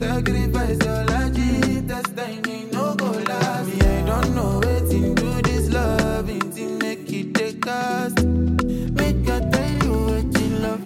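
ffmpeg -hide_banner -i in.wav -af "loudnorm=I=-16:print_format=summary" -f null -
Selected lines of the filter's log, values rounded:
Input Integrated:    -21.5 LUFS
Input True Peak:      -6.9 dBTP
Input LRA:             1.8 LU
Input Threshold:     -31.5 LUFS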